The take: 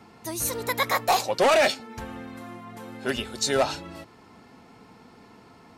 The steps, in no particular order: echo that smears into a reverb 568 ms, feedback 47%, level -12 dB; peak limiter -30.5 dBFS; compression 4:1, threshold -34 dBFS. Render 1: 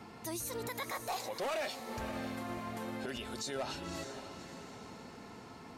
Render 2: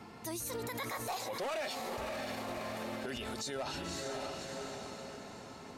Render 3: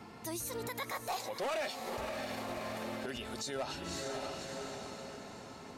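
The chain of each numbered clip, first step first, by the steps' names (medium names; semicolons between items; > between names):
compression > echo that smears into a reverb > peak limiter; echo that smears into a reverb > peak limiter > compression; echo that smears into a reverb > compression > peak limiter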